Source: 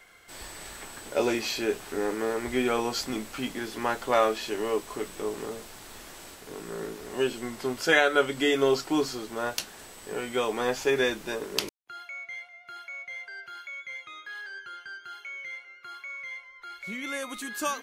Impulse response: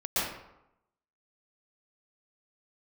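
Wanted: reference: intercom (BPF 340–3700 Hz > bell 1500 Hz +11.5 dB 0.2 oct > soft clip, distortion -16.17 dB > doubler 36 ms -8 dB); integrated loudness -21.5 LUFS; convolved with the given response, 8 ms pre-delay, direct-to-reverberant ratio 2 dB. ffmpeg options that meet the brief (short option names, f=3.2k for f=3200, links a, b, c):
-filter_complex "[0:a]asplit=2[a][b];[1:a]atrim=start_sample=2205,adelay=8[c];[b][c]afir=irnorm=-1:irlink=0,volume=-12dB[d];[a][d]amix=inputs=2:normalize=0,highpass=340,lowpass=3.7k,equalizer=f=1.5k:t=o:w=0.2:g=11.5,asoftclip=threshold=-13dB,asplit=2[e][f];[f]adelay=36,volume=-8dB[g];[e][g]amix=inputs=2:normalize=0,volume=6.5dB"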